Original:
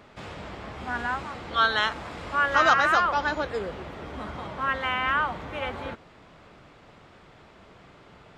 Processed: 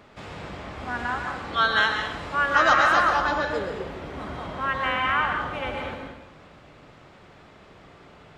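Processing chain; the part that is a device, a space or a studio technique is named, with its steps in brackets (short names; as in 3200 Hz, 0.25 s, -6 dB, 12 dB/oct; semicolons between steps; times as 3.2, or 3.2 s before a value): bathroom (reverb RT60 0.90 s, pre-delay 0.113 s, DRR 2.5 dB)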